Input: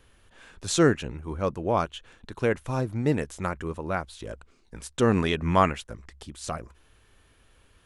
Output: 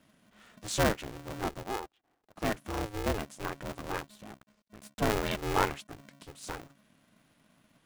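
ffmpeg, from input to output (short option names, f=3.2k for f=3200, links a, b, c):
-filter_complex "[0:a]asettb=1/sr,asplit=3[a][b][c];[a]atrim=end=1.634[d];[b]atrim=start=1.63:end=2.36,asetpts=PTS-STARTPTS,afade=t=in:d=0.004:c=qsin,afade=t=out:st=0.726:d=0.004:c=qsin,bandpass=f=590:t=q:w=3.8:csg=0[e];[c]atrim=start=2.356[f];[d][e]acrossfade=d=0.004:c1=hsin:c2=qsin[g];[g][f]acrossfade=d=0.004:c1=qsin:c2=hsin,asettb=1/sr,asplit=3[h][i][j];[h]atrim=end=4.074[k];[i]atrim=start=4.07:end=5.02,asetpts=PTS-STARTPTS,afade=t=in:d=0.004:c=qsin,afade=t=out:st=0.946:d=0.004:c=qsin,aeval=exprs='max(val(0),0)':c=same[l];[j]atrim=start=5.016[m];[k][l]acrossfade=d=0.004:c1=hsin:c2=qsin[n];[n][m]acrossfade=d=0.004:c1=qsin:c2=hsin,aeval=exprs='val(0)*sgn(sin(2*PI*210*n/s))':c=same,volume=-7dB"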